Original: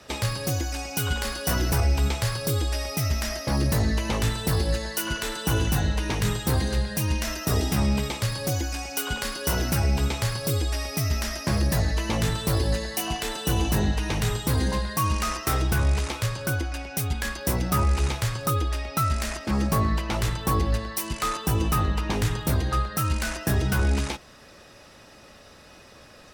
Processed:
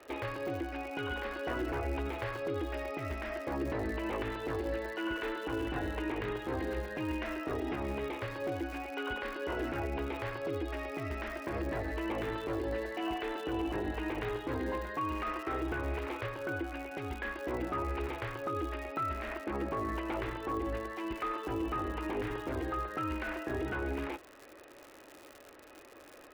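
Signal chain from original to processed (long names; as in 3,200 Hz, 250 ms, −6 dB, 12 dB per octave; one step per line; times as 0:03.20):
low-pass filter 2,600 Hz 24 dB per octave
low shelf with overshoot 240 Hz −9 dB, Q 3
brickwall limiter −21.5 dBFS, peak gain reduction 7.5 dB
surface crackle 150 per second −35 dBFS
level −5 dB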